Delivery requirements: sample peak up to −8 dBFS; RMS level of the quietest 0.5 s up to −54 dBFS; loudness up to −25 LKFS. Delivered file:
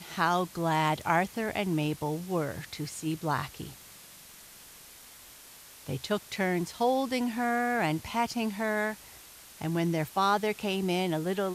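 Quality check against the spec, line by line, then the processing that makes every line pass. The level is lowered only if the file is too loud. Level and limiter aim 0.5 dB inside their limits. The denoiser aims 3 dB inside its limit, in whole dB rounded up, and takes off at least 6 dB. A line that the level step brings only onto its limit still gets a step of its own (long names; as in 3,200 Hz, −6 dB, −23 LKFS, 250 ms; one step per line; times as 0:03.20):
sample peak −11.5 dBFS: in spec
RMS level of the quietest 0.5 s −51 dBFS: out of spec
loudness −30.0 LKFS: in spec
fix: broadband denoise 6 dB, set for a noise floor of −51 dBFS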